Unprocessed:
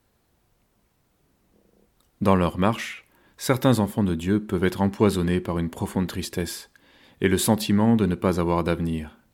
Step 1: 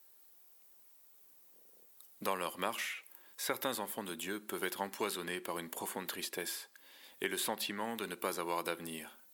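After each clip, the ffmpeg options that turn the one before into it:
ffmpeg -i in.wav -filter_complex "[0:a]acrossover=split=1100|3300[link_01][link_02][link_03];[link_01]acompressor=threshold=-24dB:ratio=4[link_04];[link_02]acompressor=threshold=-33dB:ratio=4[link_05];[link_03]acompressor=threshold=-50dB:ratio=4[link_06];[link_04][link_05][link_06]amix=inputs=3:normalize=0,highpass=420,aemphasis=mode=production:type=75fm,volume=-6dB" out.wav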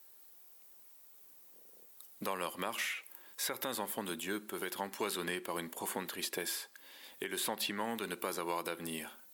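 ffmpeg -i in.wav -af "alimiter=level_in=3.5dB:limit=-24dB:level=0:latency=1:release=188,volume=-3.5dB,volume=3.5dB" out.wav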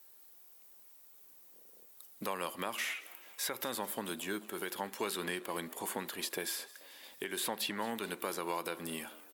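ffmpeg -i in.wav -filter_complex "[0:a]asplit=6[link_01][link_02][link_03][link_04][link_05][link_06];[link_02]adelay=217,afreqshift=64,volume=-20dB[link_07];[link_03]adelay=434,afreqshift=128,volume=-24.9dB[link_08];[link_04]adelay=651,afreqshift=192,volume=-29.8dB[link_09];[link_05]adelay=868,afreqshift=256,volume=-34.6dB[link_10];[link_06]adelay=1085,afreqshift=320,volume=-39.5dB[link_11];[link_01][link_07][link_08][link_09][link_10][link_11]amix=inputs=6:normalize=0" out.wav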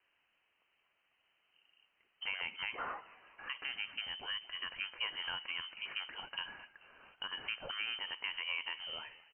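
ffmpeg -i in.wav -af "lowpass=frequency=2800:width_type=q:width=0.5098,lowpass=frequency=2800:width_type=q:width=0.6013,lowpass=frequency=2800:width_type=q:width=0.9,lowpass=frequency=2800:width_type=q:width=2.563,afreqshift=-3300,volume=-2dB" out.wav

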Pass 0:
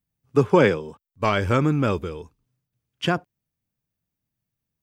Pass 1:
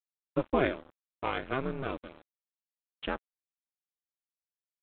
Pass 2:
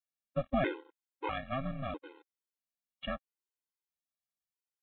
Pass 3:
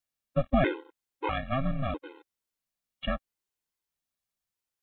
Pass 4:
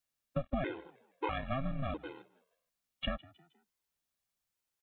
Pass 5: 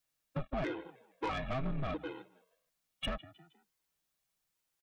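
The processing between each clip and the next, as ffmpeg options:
ffmpeg -i in.wav -af "equalizer=frequency=100:width_type=o:width=1.1:gain=-13,aeval=exprs='val(0)*sin(2*PI*130*n/s)':channel_layout=same,aresample=8000,aeval=exprs='sgn(val(0))*max(abs(val(0))-0.0141,0)':channel_layout=same,aresample=44100,volume=-6.5dB" out.wav
ffmpeg -i in.wav -af "afftfilt=real='re*gt(sin(2*PI*0.77*pts/sr)*(1-2*mod(floor(b*sr/1024/270),2)),0)':imag='im*gt(sin(2*PI*0.77*pts/sr)*(1-2*mod(floor(b*sr/1024/270),2)),0)':win_size=1024:overlap=0.75" out.wav
ffmpeg -i in.wav -af "lowshelf=frequency=120:gain=7.5,volume=5dB" out.wav
ffmpeg -i in.wav -filter_complex "[0:a]acompressor=threshold=-33dB:ratio=5,asplit=4[link_01][link_02][link_03][link_04];[link_02]adelay=157,afreqshift=60,volume=-23dB[link_05];[link_03]adelay=314,afreqshift=120,volume=-30.3dB[link_06];[link_04]adelay=471,afreqshift=180,volume=-37.7dB[link_07];[link_01][link_05][link_06][link_07]amix=inputs=4:normalize=0,volume=1dB" out.wav
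ffmpeg -i in.wav -af "aecho=1:1:6.3:0.35,asoftclip=type=tanh:threshold=-33dB,volume=3dB" out.wav

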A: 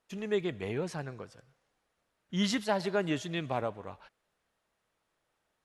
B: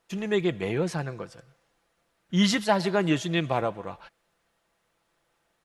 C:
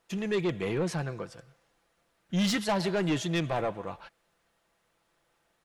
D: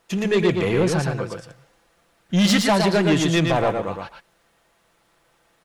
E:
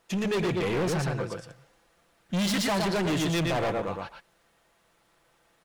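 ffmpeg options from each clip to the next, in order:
ffmpeg -i in.wav -af "aecho=1:1:5.9:0.35,volume=6.5dB" out.wav
ffmpeg -i in.wav -af "asoftclip=type=tanh:threshold=-22.5dB" out.wav
ffmpeg -i in.wav -af "aecho=1:1:115:0.596,volume=9dB" out.wav
ffmpeg -i in.wav -af "asoftclip=type=hard:threshold=-21dB,volume=-3.5dB" out.wav

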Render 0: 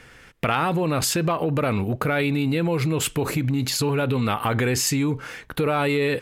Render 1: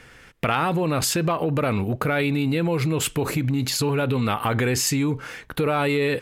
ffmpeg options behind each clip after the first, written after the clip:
ffmpeg -i in.wav -af anull out.wav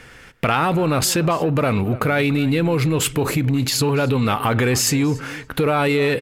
ffmpeg -i in.wav -filter_complex "[0:a]asplit=2[link_01][link_02];[link_02]asoftclip=type=hard:threshold=-24dB,volume=-11dB[link_03];[link_01][link_03]amix=inputs=2:normalize=0,asplit=2[link_04][link_05];[link_05]adelay=285,lowpass=frequency=3900:poles=1,volume=-18dB,asplit=2[link_06][link_07];[link_07]adelay=285,lowpass=frequency=3900:poles=1,volume=0.25[link_08];[link_04][link_06][link_08]amix=inputs=3:normalize=0,volume=2.5dB" out.wav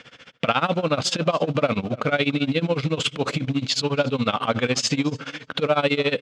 ffmpeg -i in.wav -filter_complex "[0:a]asplit=2[link_01][link_02];[link_02]acrusher=bits=3:mode=log:mix=0:aa=0.000001,volume=-12dB[link_03];[link_01][link_03]amix=inputs=2:normalize=0,tremolo=f=14:d=0.9,highpass=170,equalizer=frequency=370:width_type=q:width=4:gain=-9,equalizer=frequency=580:width_type=q:width=4:gain=4,equalizer=frequency=890:width_type=q:width=4:gain=-4,equalizer=frequency=1800:width_type=q:width=4:gain=-5,equalizer=frequency=3300:width_type=q:width=4:gain=7,lowpass=frequency=6200:width=0.5412,lowpass=frequency=6200:width=1.3066" out.wav

